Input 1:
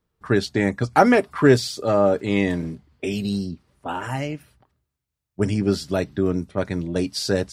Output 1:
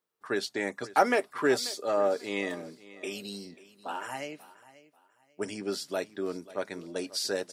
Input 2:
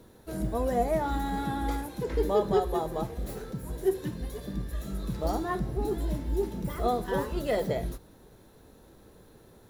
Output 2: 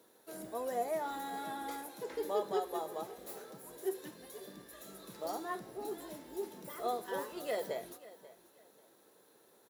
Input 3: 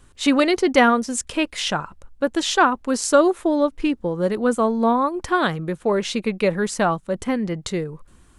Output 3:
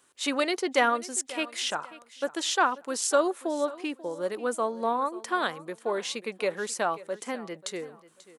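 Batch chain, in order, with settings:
high-pass 390 Hz 12 dB/octave; treble shelf 6.6 kHz +6.5 dB; on a send: feedback delay 538 ms, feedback 29%, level -18.5 dB; on the sum: trim -7 dB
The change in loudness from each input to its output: -9.5 LU, -9.5 LU, -8.5 LU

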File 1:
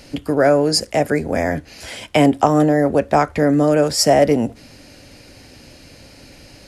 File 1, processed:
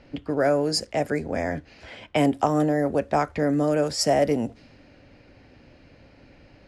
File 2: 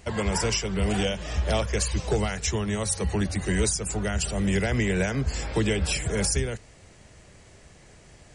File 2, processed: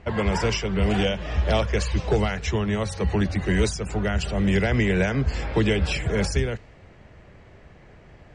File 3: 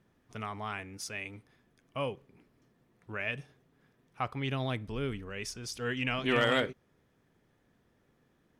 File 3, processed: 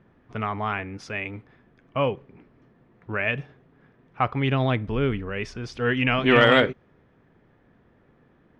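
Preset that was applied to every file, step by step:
level-controlled noise filter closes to 2.2 kHz, open at -10.5 dBFS; normalise loudness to -24 LUFS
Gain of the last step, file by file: -7.5 dB, +3.5 dB, +11.0 dB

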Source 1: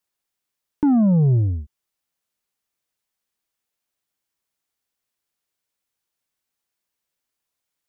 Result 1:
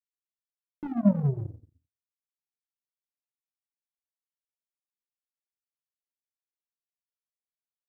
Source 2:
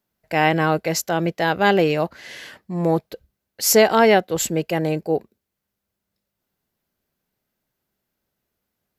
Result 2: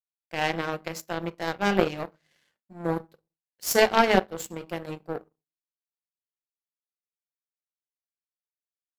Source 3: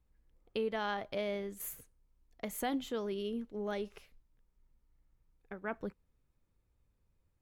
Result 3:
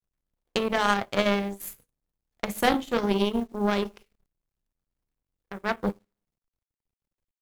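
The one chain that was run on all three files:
simulated room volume 310 m³, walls furnished, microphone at 0.84 m; bit crusher 11-bit; power-law waveshaper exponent 2; normalise loudness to -27 LUFS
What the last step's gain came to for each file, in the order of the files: -6.0 dB, -1.0 dB, +17.5 dB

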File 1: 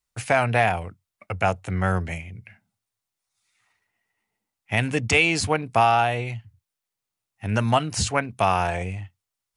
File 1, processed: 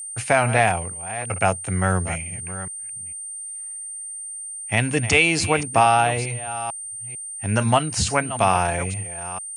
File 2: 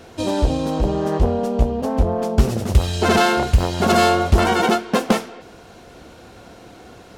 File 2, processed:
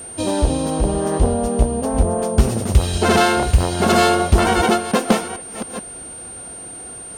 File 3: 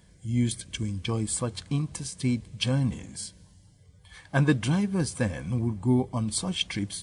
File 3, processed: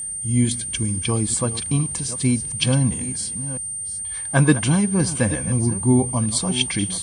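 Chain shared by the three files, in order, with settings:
chunks repeated in reverse 447 ms, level -13 dB; whistle 8.8 kHz -33 dBFS; peak normalisation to -3 dBFS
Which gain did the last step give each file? +2.0 dB, +1.0 dB, +6.5 dB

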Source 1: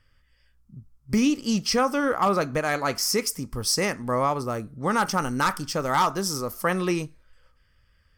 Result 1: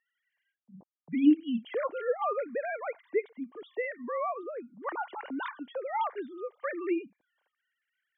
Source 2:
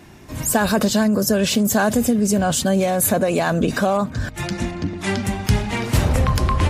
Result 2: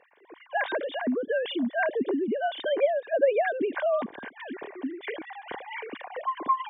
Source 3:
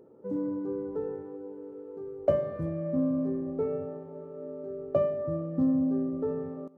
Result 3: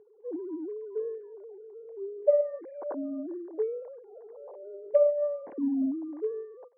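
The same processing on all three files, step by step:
formants replaced by sine waves; comb of notches 1.3 kHz; peak normalisation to -12 dBFS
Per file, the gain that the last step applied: -6.0 dB, -9.5 dB, -0.5 dB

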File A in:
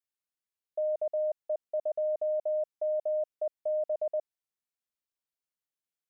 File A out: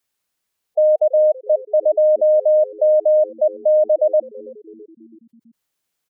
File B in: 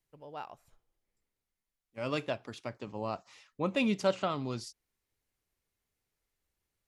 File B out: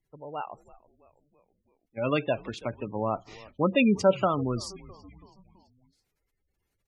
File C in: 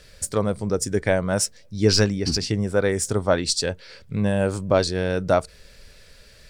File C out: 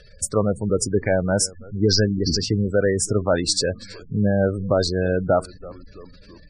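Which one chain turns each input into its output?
frequency-shifting echo 329 ms, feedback 57%, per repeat -96 Hz, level -21 dB; spectral gate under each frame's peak -20 dB strong; loudness maximiser +10.5 dB; peak normalisation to -9 dBFS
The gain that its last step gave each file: +5.5 dB, -3.0 dB, -8.0 dB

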